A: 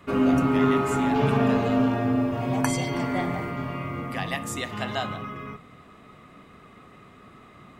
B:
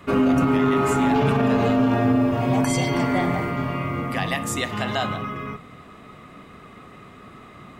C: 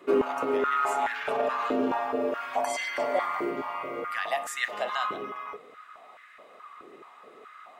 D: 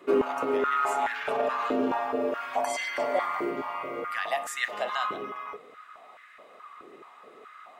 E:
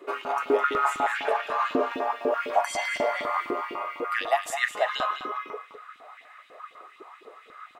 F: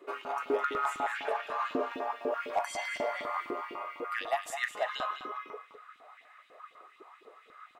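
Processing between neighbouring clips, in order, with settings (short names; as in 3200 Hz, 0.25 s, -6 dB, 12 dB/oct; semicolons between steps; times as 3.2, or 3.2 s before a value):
limiter -16.5 dBFS, peak gain reduction 9.5 dB; gain +5.5 dB
stepped high-pass 4.7 Hz 370–1700 Hz; gain -8.5 dB
nothing audible
LFO high-pass saw up 4 Hz 270–4100 Hz; echo 0.208 s -9.5 dB
hard clip -14 dBFS, distortion -26 dB; gain -7 dB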